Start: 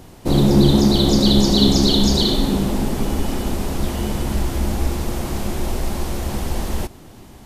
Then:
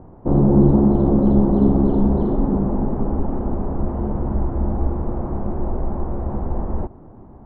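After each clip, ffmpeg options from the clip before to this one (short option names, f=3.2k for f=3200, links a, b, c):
-af "lowpass=f=1.1k:w=0.5412,lowpass=f=1.1k:w=1.3066"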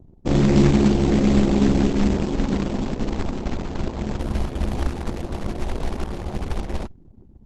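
-af "acrusher=bits=3:mode=log:mix=0:aa=0.000001,anlmdn=2.51,volume=-2dB" -ar 48000 -c:a libopus -b:a 12k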